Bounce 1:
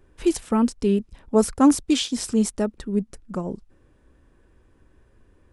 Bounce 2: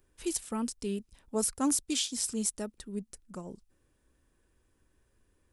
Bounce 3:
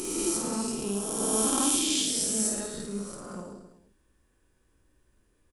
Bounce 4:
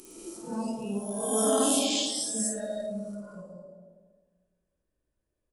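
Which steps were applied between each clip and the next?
first-order pre-emphasis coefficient 0.8
peak hold with a rise ahead of every peak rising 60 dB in 2.38 s; on a send: reverse bouncing-ball delay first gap 50 ms, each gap 1.2×, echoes 5; on the sum: level −3 dB
noise reduction from a noise print of the clip's start 17 dB; on a send at −3 dB: low-pass with resonance 630 Hz, resonance Q 4.9 + convolution reverb RT60 1.5 s, pre-delay 89 ms

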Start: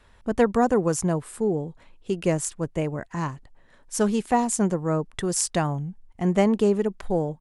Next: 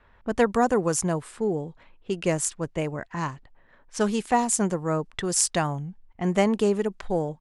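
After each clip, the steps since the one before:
low-pass that shuts in the quiet parts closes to 1,900 Hz, open at −20.5 dBFS
tilt shelving filter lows −3 dB, about 760 Hz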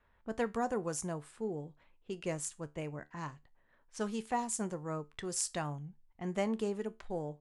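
tuned comb filter 74 Hz, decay 0.23 s, harmonics all, mix 50%
level −9 dB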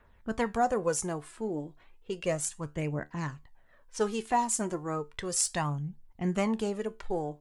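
phase shifter 0.33 Hz, delay 3.4 ms, feedback 47%
level +5.5 dB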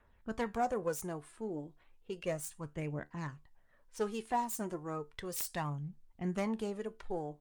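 phase distortion by the signal itself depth 0.096 ms
level −6 dB
Opus 48 kbit/s 48,000 Hz

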